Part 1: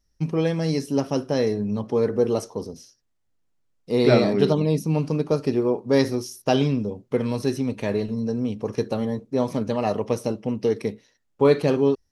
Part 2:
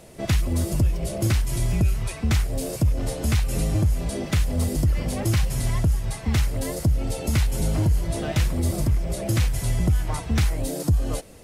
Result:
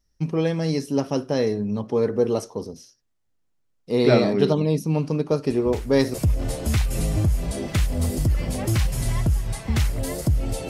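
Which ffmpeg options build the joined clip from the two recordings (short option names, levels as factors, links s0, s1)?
-filter_complex "[1:a]asplit=2[s0][s1];[0:a]apad=whole_dur=10.69,atrim=end=10.69,atrim=end=6.142[s2];[s1]atrim=start=2.718:end=7.27[s3];[s0]atrim=start=2.08:end=2.72,asetpts=PTS-STARTPTS,volume=0.251,afade=t=in:d=0.004:c=hsin,afade=t=out:st=0.636:d=0.004:c=hsin,adelay=5500[s4];[s2][s3]acrossfade=d=0.004:c1=hsin:c2=hsin[s5];[s5][s4]amix=inputs=2:normalize=0"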